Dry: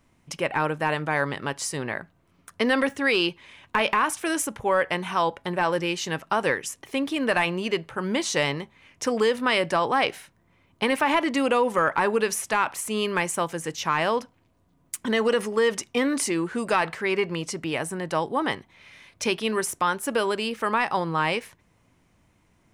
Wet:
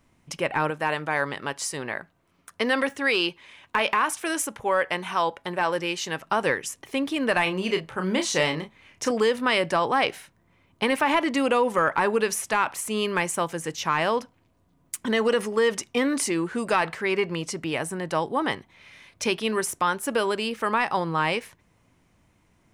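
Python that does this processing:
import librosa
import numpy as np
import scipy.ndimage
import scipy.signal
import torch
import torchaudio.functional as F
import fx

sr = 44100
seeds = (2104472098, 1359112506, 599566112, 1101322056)

y = fx.low_shelf(x, sr, hz=250.0, db=-7.5, at=(0.7, 6.21))
y = fx.doubler(y, sr, ms=32.0, db=-7, at=(7.43, 9.11))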